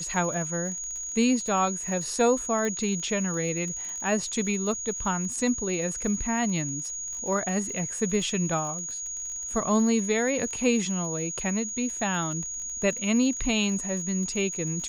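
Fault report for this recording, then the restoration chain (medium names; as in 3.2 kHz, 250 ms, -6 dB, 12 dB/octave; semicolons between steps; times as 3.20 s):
crackle 46 per s -35 dBFS
whine 6.7 kHz -32 dBFS
2.65 s: pop -18 dBFS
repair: de-click; band-stop 6.7 kHz, Q 30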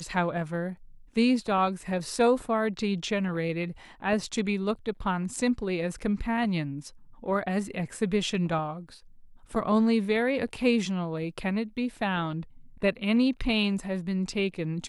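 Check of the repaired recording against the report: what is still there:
nothing left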